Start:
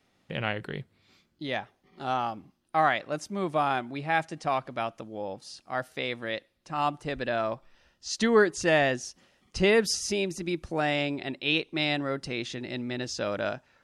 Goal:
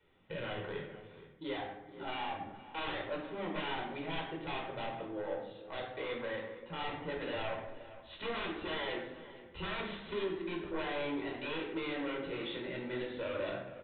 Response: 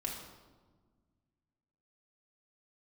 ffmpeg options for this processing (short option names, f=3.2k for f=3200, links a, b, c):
-filter_complex "[0:a]acrossover=split=260[a][b];[a]acompressor=threshold=-48dB:ratio=6[c];[c][b]amix=inputs=2:normalize=0,aeval=exprs='0.0398*(abs(mod(val(0)/0.0398+3,4)-2)-1)':c=same,flanger=delay=2.2:depth=9.6:regen=-32:speed=0.68:shape=sinusoidal,aresample=8000,asoftclip=type=tanh:threshold=-37dB,aresample=44100,asplit=2[d][e];[e]adelay=466.5,volume=-15dB,highshelf=f=4k:g=-10.5[f];[d][f]amix=inputs=2:normalize=0[g];[1:a]atrim=start_sample=2205,asetrate=70560,aresample=44100[h];[g][h]afir=irnorm=-1:irlink=0,volume=6dB"